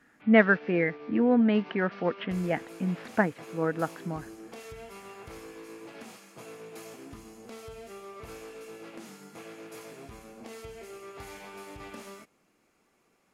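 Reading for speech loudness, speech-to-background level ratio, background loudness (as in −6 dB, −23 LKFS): −26.5 LKFS, 19.0 dB, −45.5 LKFS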